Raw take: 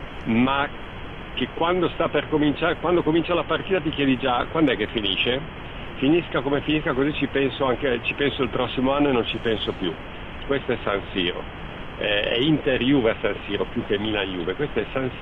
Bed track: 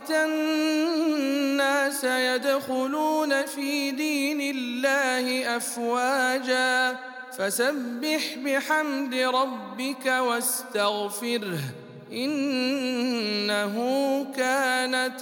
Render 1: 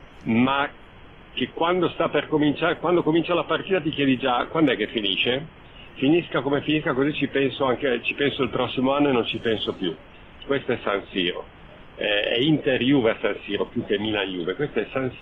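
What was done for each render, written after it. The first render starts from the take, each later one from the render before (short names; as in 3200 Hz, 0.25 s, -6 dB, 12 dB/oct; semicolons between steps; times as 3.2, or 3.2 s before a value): noise print and reduce 11 dB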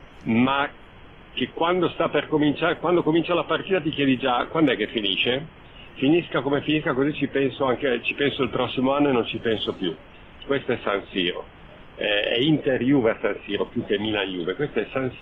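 6.95–7.68 LPF 2300 Hz 6 dB/oct; 8.88–9.51 tone controls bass 0 dB, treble -11 dB; 12.67–13.47 LPF 1900 Hz -> 2700 Hz 24 dB/oct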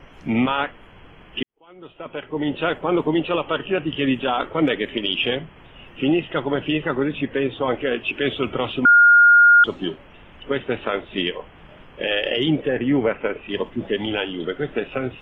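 1.43–2.66 fade in quadratic; 8.85–9.64 bleep 1420 Hz -8 dBFS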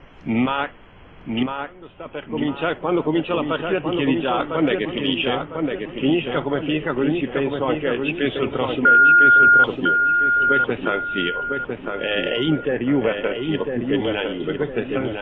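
air absorption 100 m; darkening echo 1.003 s, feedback 43%, low-pass 2000 Hz, level -4 dB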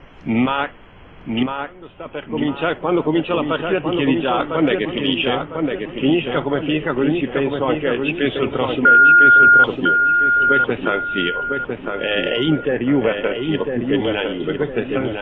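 gain +2.5 dB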